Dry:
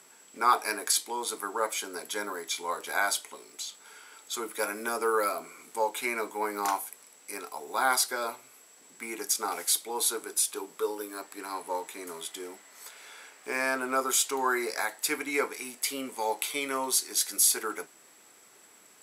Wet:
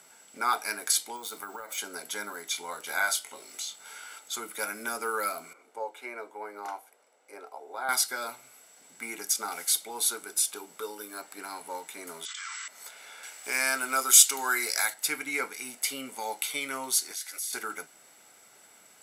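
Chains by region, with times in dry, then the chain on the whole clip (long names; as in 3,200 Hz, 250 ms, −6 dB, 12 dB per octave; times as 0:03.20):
0:01.16–0:01.78: downward compressor 12 to 1, threshold −32 dBFS + bad sample-rate conversion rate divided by 2×, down filtered, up hold
0:02.86–0:04.19: double-tracking delay 22 ms −6.5 dB + one half of a high-frequency compander encoder only
0:05.53–0:07.89: four-pole ladder high-pass 350 Hz, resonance 25% + spectral tilt −4 dB per octave
0:12.25–0:12.68: Chebyshev band-pass filter 1,100–7,700 Hz, order 5 + envelope flattener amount 100%
0:13.23–0:14.94: high-pass filter 210 Hz 6 dB per octave + high-shelf EQ 2,500 Hz +10.5 dB
0:17.11–0:17.53: high-pass filter 630 Hz + parametric band 2,000 Hz +6.5 dB 0.73 octaves + downward compressor 2.5 to 1, threshold −38 dBFS
whole clip: dynamic equaliser 620 Hz, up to −7 dB, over −42 dBFS, Q 0.78; comb filter 1.4 ms, depth 38%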